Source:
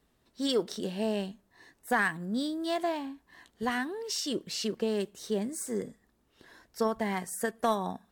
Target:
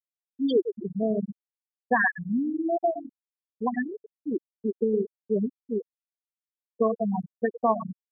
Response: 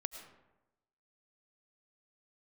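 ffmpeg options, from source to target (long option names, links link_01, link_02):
-filter_complex "[0:a]asettb=1/sr,asplit=3[link_01][link_02][link_03];[link_01]atrim=end=7.044[link_04];[link_02]atrim=start=7.04:end=7.53,asetpts=PTS-STARTPTS,afade=type=in:duration=0.004:curve=qsin,afade=type=out:start_time=0.486:duration=0.004:curve=qsin,aeval=exprs='val(0)+0.5*0.0133*sgn(val(0))':channel_layout=same[link_05];[link_03]atrim=start=7.526[link_06];[link_04][link_05]acrossfade=duration=0.004:curve1=hsin:curve2=qsin[link_07];[link_07][link_06]acrossfade=duration=0.004:curve1=qsin:curve2=hsin,aecho=1:1:114|228:0.376|0.0601,afftfilt=real='re*gte(hypot(re,im),0.178)':imag='im*gte(hypot(re,im),0.178)':win_size=1024:overlap=0.75,volume=6dB"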